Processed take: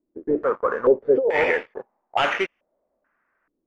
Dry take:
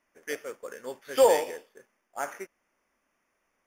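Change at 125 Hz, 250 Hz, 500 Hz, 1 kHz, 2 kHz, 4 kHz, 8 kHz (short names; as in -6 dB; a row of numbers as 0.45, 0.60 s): n/a, +13.5 dB, +6.5 dB, +6.5 dB, +13.5 dB, +7.0 dB, under -10 dB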